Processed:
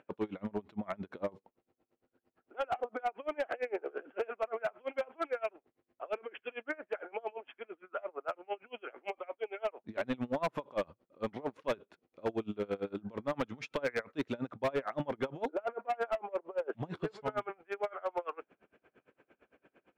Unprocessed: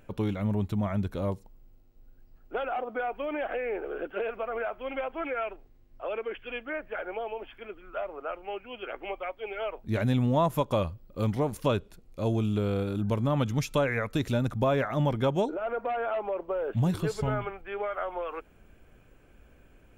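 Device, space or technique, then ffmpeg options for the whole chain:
helicopter radio: -af "highpass=300,lowpass=2.5k,aeval=exprs='val(0)*pow(10,-29*(0.5-0.5*cos(2*PI*8.8*n/s))/20)':c=same,asoftclip=type=hard:threshold=-29.5dB,volume=3dB"

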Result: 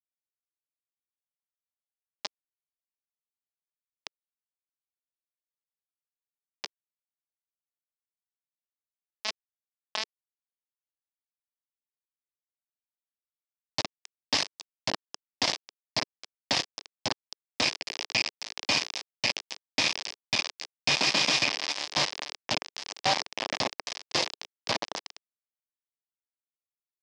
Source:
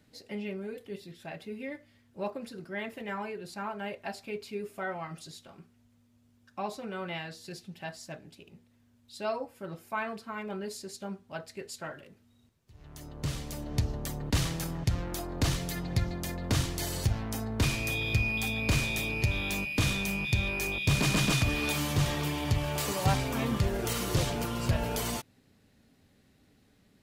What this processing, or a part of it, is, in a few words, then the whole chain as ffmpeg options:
hand-held game console: -af "acrusher=bits=3:mix=0:aa=0.000001,highpass=400,equalizer=f=420:t=q:w=4:g=-8,equalizer=f=1.4k:t=q:w=4:g=-9,equalizer=f=5.1k:t=q:w=4:g=7,lowpass=f=5.6k:w=0.5412,lowpass=f=5.6k:w=1.3066,volume=3.5dB"

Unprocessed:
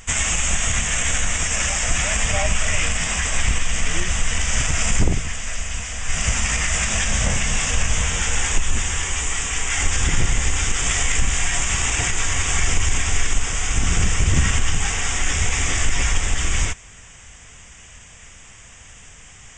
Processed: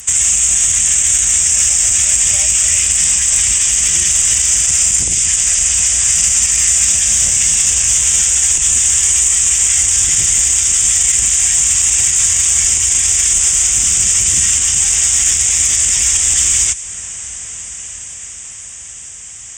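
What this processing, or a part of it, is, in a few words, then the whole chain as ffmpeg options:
FM broadcast chain: -filter_complex "[0:a]highpass=f=41:w=0.5412,highpass=f=41:w=1.3066,dynaudnorm=f=210:g=21:m=11.5dB,acrossover=split=190|2300[a][b][c];[a]acompressor=threshold=-27dB:ratio=4[d];[b]acompressor=threshold=-35dB:ratio=4[e];[c]acompressor=threshold=-22dB:ratio=4[f];[d][e][f]amix=inputs=3:normalize=0,aemphasis=mode=production:type=50fm,alimiter=limit=-9.5dB:level=0:latency=1:release=32,asoftclip=type=hard:threshold=-11dB,lowpass=f=15k:w=0.5412,lowpass=f=15k:w=1.3066,aemphasis=mode=production:type=50fm"

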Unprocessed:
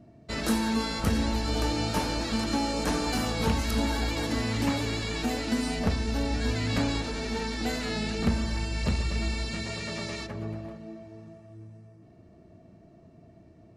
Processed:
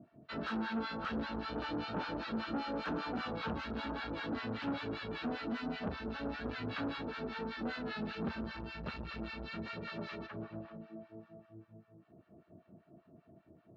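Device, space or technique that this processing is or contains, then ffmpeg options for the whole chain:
guitar amplifier with harmonic tremolo: -filter_complex "[0:a]acrossover=split=920[a][b];[a]aeval=exprs='val(0)*(1-1/2+1/2*cos(2*PI*5.1*n/s))':c=same[c];[b]aeval=exprs='val(0)*(1-1/2-1/2*cos(2*PI*5.1*n/s))':c=same[d];[c][d]amix=inputs=2:normalize=0,asoftclip=type=tanh:threshold=-30.5dB,highpass=110,equalizer=f=110:t=q:w=4:g=-4,equalizer=f=1.4k:t=q:w=4:g=7,equalizer=f=2.1k:t=q:w=4:g=-6,lowpass=f=3.4k:w=0.5412,lowpass=f=3.4k:w=1.3066,volume=-1dB"

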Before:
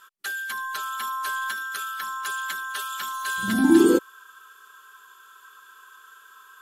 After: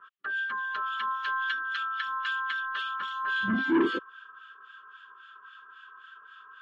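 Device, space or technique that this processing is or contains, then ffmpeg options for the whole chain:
guitar amplifier with harmonic tremolo: -filter_complex "[0:a]acrossover=split=1400[a][b];[a]aeval=exprs='val(0)*(1-1/2+1/2*cos(2*PI*3.7*n/s))':c=same[c];[b]aeval=exprs='val(0)*(1-1/2-1/2*cos(2*PI*3.7*n/s))':c=same[d];[c][d]amix=inputs=2:normalize=0,asoftclip=type=tanh:threshold=-19.5dB,highpass=86,equalizer=f=820:t=q:w=4:g=-7,equalizer=f=1.2k:t=q:w=4:g=9,equalizer=f=1.7k:t=q:w=4:g=6,equalizer=f=3k:t=q:w=4:g=7,lowpass=f=3.7k:w=0.5412,lowpass=f=3.7k:w=1.3066"

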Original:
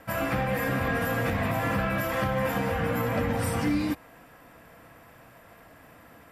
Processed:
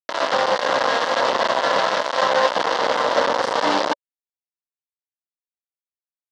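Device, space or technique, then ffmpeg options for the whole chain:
hand-held game console: -af "acrusher=bits=3:mix=0:aa=0.000001,highpass=450,equalizer=f=570:t=q:w=4:g=9,equalizer=f=980:t=q:w=4:g=7,equalizer=f=2.4k:t=q:w=4:g=-10,lowpass=f=5.1k:w=0.5412,lowpass=f=5.1k:w=1.3066,volume=7dB"

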